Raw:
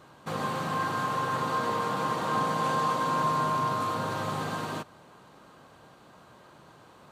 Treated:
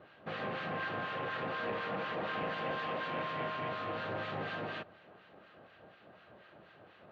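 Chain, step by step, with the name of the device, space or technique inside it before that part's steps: guitar amplifier with harmonic tremolo (harmonic tremolo 4.1 Hz, crossover 1200 Hz; soft clip -28.5 dBFS, distortion -14 dB; speaker cabinet 76–3500 Hz, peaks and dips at 140 Hz -8 dB, 260 Hz -5 dB, 640 Hz +4 dB, 990 Hz -10 dB, 1800 Hz +5 dB, 2700 Hz +4 dB)

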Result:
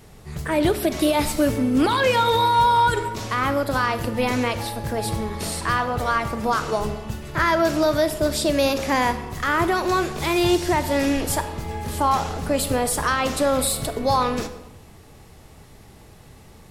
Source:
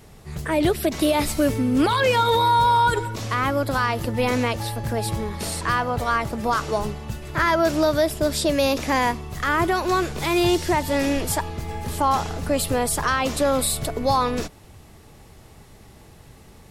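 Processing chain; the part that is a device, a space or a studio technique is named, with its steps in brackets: saturated reverb return (on a send at -7.5 dB: reverb RT60 0.85 s, pre-delay 22 ms + soft clip -19 dBFS, distortion -12 dB)

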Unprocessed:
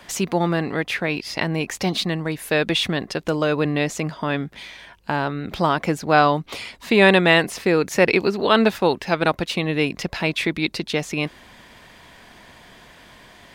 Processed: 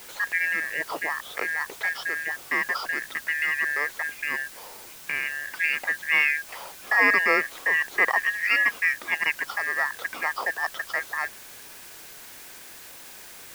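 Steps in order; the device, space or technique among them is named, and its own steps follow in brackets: split-band scrambled radio (four-band scrambler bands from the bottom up 2143; BPF 400–2800 Hz; white noise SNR 17 dB); gain -4.5 dB

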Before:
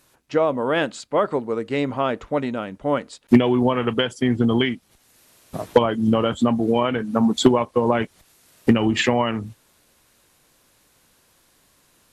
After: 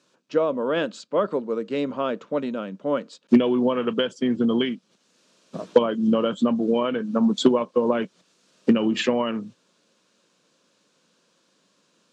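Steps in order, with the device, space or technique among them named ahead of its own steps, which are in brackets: television speaker (speaker cabinet 170–6900 Hz, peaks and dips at 190 Hz +6 dB, 520 Hz +4 dB, 790 Hz -8 dB, 2000 Hz -8 dB); gain -3 dB

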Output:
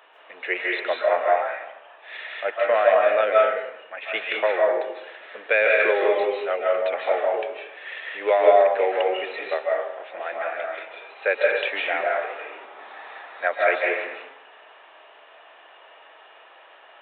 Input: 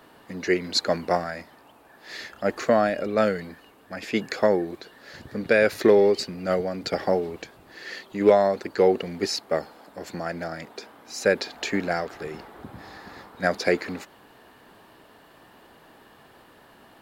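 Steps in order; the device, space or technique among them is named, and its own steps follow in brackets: musical greeting card (downsampling 8000 Hz; HPF 520 Hz 24 dB/oct; bell 2500 Hz +6 dB 0.51 oct); digital reverb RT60 0.85 s, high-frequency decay 0.55×, pre-delay 0.115 s, DRR -2.5 dB

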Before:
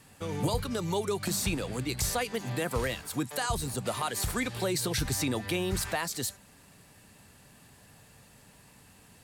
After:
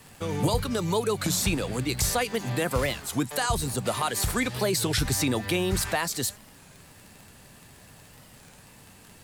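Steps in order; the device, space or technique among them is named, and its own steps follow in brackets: warped LP (record warp 33 1/3 rpm, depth 160 cents; crackle 34/s -41 dBFS; pink noise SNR 31 dB); gain +4.5 dB

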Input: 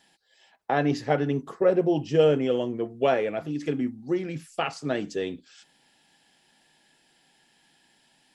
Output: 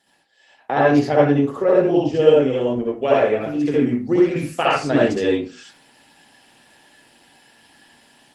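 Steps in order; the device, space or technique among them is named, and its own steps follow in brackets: far-field microphone of a smart speaker (reverb RT60 0.35 s, pre-delay 60 ms, DRR -5.5 dB; HPF 100 Hz 6 dB/oct; AGC gain up to 8.5 dB; gain -1 dB; Opus 24 kbps 48000 Hz)

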